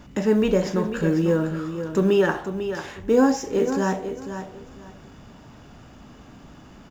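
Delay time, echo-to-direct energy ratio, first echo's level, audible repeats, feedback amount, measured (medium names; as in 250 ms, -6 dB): 496 ms, -9.5 dB, -9.5 dB, 2, 22%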